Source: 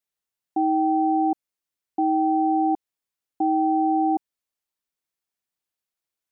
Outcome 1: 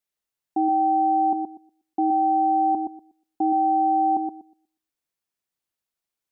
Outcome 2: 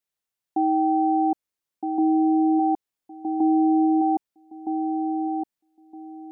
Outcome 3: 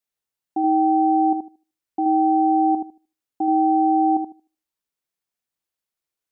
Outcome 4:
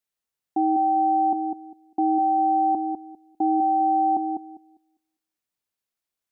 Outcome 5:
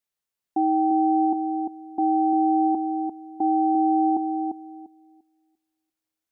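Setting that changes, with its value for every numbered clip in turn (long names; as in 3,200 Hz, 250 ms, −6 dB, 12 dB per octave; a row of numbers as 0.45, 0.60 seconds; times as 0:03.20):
feedback echo with a low-pass in the loop, delay time: 121, 1,265, 76, 200, 346 milliseconds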